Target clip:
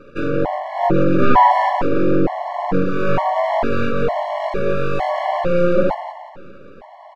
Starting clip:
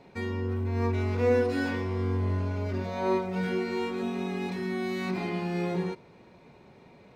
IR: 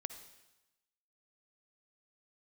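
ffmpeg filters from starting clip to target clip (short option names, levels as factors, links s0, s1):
-filter_complex "[0:a]highpass=f=44:p=1,lowshelf=f=680:t=q:w=1.5:g=8,flanger=delay=3.2:depth=1.2:regen=-48:speed=0.38:shape=triangular,aeval=exprs='abs(val(0))':c=same,asplit=2[s0][s1];[s1]highpass=f=720:p=1,volume=6.31,asoftclip=type=tanh:threshold=0.398[s2];[s0][s2]amix=inputs=2:normalize=0,lowpass=f=1100:p=1,volume=0.501,aecho=1:1:177|354|531|708:0.355|0.142|0.0568|0.0227,asplit=2[s3][s4];[1:a]atrim=start_sample=2205[s5];[s4][s5]afir=irnorm=-1:irlink=0,volume=3.16[s6];[s3][s6]amix=inputs=2:normalize=0,afftfilt=real='re*gt(sin(2*PI*1.1*pts/sr)*(1-2*mod(floor(b*sr/1024/570),2)),0)':imag='im*gt(sin(2*PI*1.1*pts/sr)*(1-2*mod(floor(b*sr/1024/570),2)),0)':win_size=1024:overlap=0.75"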